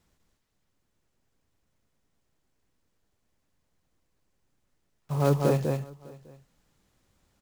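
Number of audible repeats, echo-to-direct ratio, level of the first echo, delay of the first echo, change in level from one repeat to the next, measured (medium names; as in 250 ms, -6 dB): 3, -3.5 dB, -3.5 dB, 198 ms, no regular repeats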